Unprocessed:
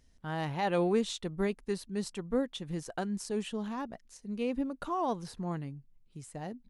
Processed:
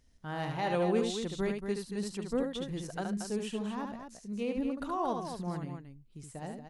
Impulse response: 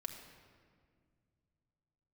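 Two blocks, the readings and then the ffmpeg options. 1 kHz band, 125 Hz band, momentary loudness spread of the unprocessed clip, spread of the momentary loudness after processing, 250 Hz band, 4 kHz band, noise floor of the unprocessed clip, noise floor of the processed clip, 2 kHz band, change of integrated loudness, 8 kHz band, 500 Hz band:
-0.5 dB, -0.5 dB, 14 LU, 13 LU, 0.0 dB, -0.5 dB, -64 dBFS, -59 dBFS, -0.5 dB, -0.5 dB, -0.5 dB, -0.5 dB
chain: -af "aecho=1:1:72.89|230.3:0.562|0.398,volume=-2dB"

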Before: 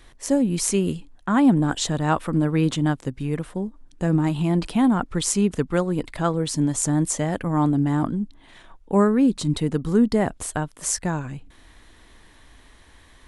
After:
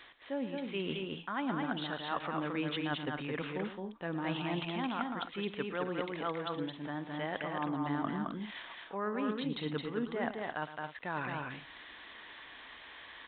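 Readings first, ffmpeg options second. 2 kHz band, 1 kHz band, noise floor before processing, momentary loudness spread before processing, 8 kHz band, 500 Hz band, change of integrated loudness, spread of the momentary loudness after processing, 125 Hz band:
-5.0 dB, -9.0 dB, -52 dBFS, 10 LU, under -40 dB, -12.0 dB, -14.5 dB, 13 LU, -19.0 dB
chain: -af "highpass=f=1.3k:p=1,areverse,acompressor=threshold=-40dB:ratio=6,areverse,aecho=1:1:112|217|264:0.224|0.668|0.224,aresample=8000,aresample=44100,volume=6dB"

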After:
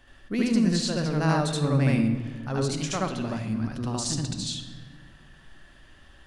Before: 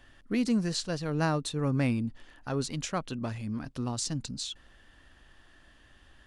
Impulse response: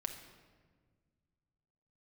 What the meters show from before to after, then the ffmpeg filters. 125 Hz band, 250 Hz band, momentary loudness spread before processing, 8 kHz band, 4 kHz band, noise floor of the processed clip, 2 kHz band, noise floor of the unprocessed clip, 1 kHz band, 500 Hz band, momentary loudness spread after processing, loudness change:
+6.5 dB, +5.5 dB, 9 LU, +4.5 dB, +4.5 dB, -53 dBFS, +4.5 dB, -59 dBFS, +5.0 dB, +5.0 dB, 9 LU, +5.0 dB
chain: -filter_complex "[0:a]asplit=2[a][b];[1:a]atrim=start_sample=2205,adelay=75[c];[b][c]afir=irnorm=-1:irlink=0,volume=3.5dB[d];[a][d]amix=inputs=2:normalize=0"

